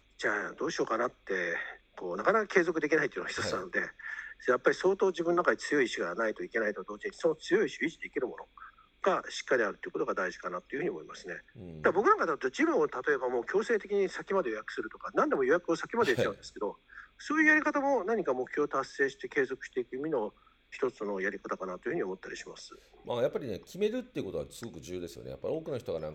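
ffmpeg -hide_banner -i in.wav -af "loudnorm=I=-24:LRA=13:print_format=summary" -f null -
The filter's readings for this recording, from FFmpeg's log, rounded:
Input Integrated:    -31.8 LUFS
Input True Peak:      -8.7 dBTP
Input LRA:             7.0 LU
Input Threshold:     -42.2 LUFS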